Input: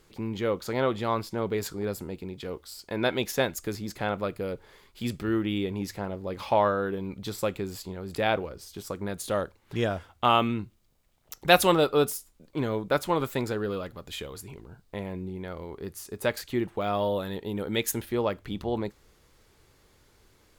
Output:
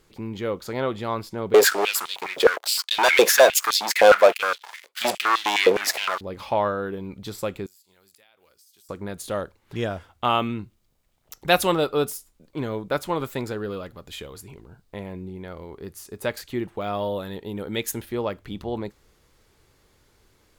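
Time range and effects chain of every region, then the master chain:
0:01.54–0:06.21: leveller curve on the samples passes 5 + high-pass on a step sequencer 9.7 Hz 500–3,600 Hz
0:07.66–0:08.89: first-order pre-emphasis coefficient 0.97 + downward compressor 12 to 1, threshold −53 dBFS
whole clip: no processing

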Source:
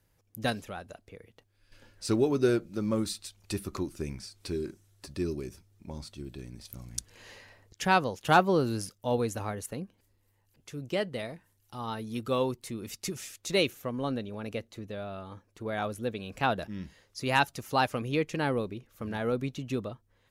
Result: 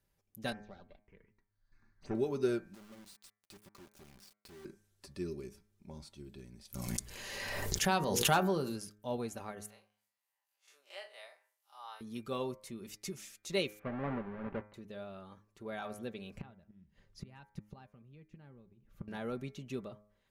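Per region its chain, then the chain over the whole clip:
0:00.52–0:02.15: lower of the sound and its delayed copy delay 0.48 ms + phaser swept by the level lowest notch 370 Hz, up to 4,200 Hz, full sweep at −36.5 dBFS + high-frequency loss of the air 180 metres
0:02.74–0:04.65: downward compressor 4 to 1, threshold −48 dBFS + bit-depth reduction 8 bits, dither none
0:06.74–0:08.76: high-shelf EQ 7,800 Hz +9.5 dB + mains-hum notches 60/120/180/240/300/360/420/480 Hz + background raised ahead of every attack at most 25 dB per second
0:09.70–0:12.01: spectrum smeared in time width 84 ms + high-pass filter 710 Hz 24 dB per octave
0:13.79–0:14.74: each half-wave held at its own peak + low-pass filter 2,000 Hz 24 dB per octave
0:16.37–0:19.08: bass and treble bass +14 dB, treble −9 dB + gate with flip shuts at −22 dBFS, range −25 dB
whole clip: comb filter 5.1 ms, depth 38%; hum removal 104.6 Hz, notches 23; level −8.5 dB

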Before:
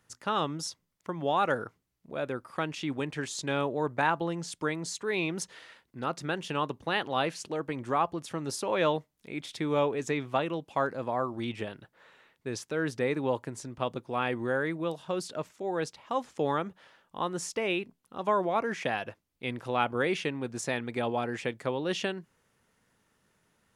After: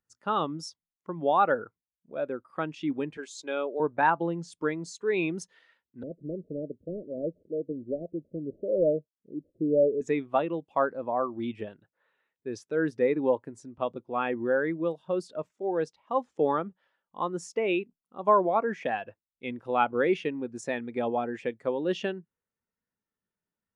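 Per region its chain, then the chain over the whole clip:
0:03.17–0:03.80: high-pass filter 360 Hz + notch filter 1,800 Hz, Q 7 + dynamic equaliser 940 Hz, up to −7 dB, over −48 dBFS, Q 3.2
0:06.03–0:10.01: variable-slope delta modulation 32 kbit/s + Butterworth low-pass 630 Hz 96 dB per octave
whole clip: parametric band 130 Hz −7.5 dB 0.27 octaves; every bin expanded away from the loudest bin 1.5 to 1; level +2 dB

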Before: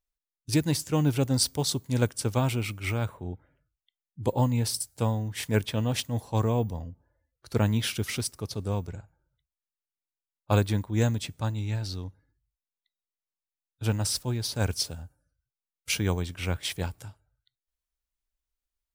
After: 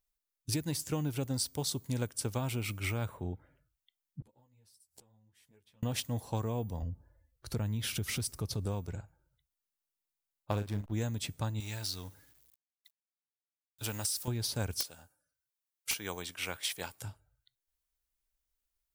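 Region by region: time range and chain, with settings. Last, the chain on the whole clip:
0:04.20–0:05.83: downward compressor 4 to 1, threshold −36 dBFS + gate with flip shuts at −34 dBFS, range −25 dB + string-ensemble chorus
0:06.82–0:08.66: low-shelf EQ 130 Hz +10.5 dB + downward compressor 2 to 1, threshold −32 dBFS
0:10.51–0:10.92: slack as between gear wheels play −31 dBFS + double-tracking delay 39 ms −9.5 dB
0:11.60–0:14.28: mu-law and A-law mismatch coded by mu + spectral tilt +2.5 dB per octave + downward compressor 1.5 to 1, threshold −42 dBFS
0:14.80–0:17.02: high-pass filter 880 Hz 6 dB per octave + wrap-around overflow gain 18 dB
whole clip: high-shelf EQ 8,700 Hz +6.5 dB; downward compressor, threshold −31 dBFS

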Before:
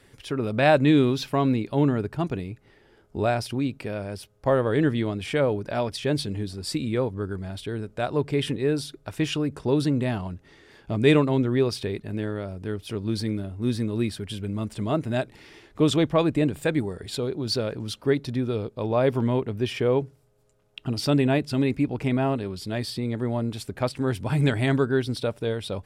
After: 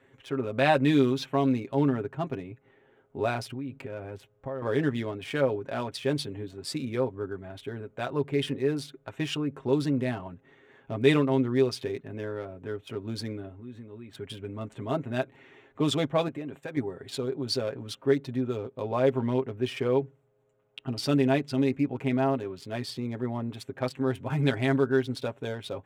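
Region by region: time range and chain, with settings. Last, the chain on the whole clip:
0:03.47–0:04.62: downward compressor 16 to 1, threshold −29 dBFS + low-shelf EQ 83 Hz +10 dB
0:13.52–0:14.15: running median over 3 samples + downward compressor, threshold −35 dBFS
0:16.28–0:16.77: downward expander −37 dBFS + low-shelf EQ 150 Hz −9.5 dB + downward compressor 12 to 1, threshold −27 dBFS
whole clip: adaptive Wiener filter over 9 samples; high-pass filter 210 Hz 6 dB per octave; comb filter 7.5 ms, depth 61%; level −3.5 dB

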